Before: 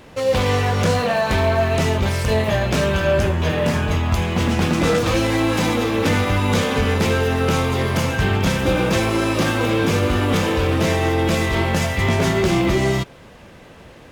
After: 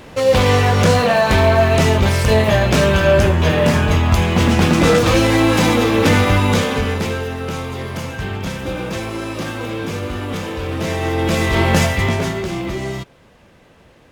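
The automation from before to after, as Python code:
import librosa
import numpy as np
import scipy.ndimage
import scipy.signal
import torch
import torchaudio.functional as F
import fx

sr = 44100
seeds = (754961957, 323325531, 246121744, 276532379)

y = fx.gain(x, sr, db=fx.line((6.33, 5.0), (7.37, -6.0), (10.56, -6.0), (11.79, 6.0), (12.46, -6.0)))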